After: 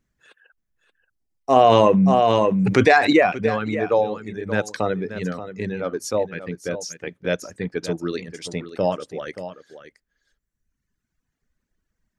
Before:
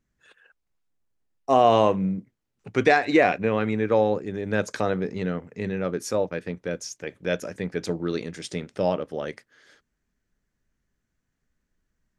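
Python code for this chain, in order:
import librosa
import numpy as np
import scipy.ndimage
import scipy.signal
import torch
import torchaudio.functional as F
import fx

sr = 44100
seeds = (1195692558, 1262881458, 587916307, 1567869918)

y = fx.dereverb_blind(x, sr, rt60_s=1.7)
y = y + 10.0 ** (-12.0 / 20.0) * np.pad(y, (int(579 * sr / 1000.0), 0))[:len(y)]
y = fx.env_flatten(y, sr, amount_pct=70, at=(1.56, 3.13))
y = y * librosa.db_to_amplitude(3.0)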